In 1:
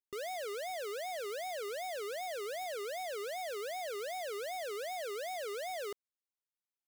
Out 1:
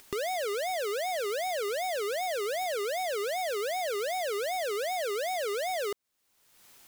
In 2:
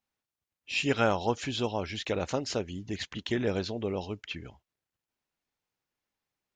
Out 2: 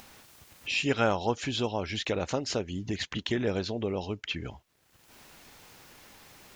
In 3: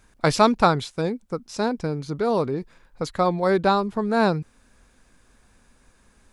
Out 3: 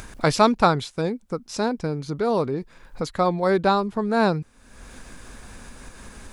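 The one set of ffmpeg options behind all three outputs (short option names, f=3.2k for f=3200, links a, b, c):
-af "acompressor=mode=upward:threshold=-26dB:ratio=2.5"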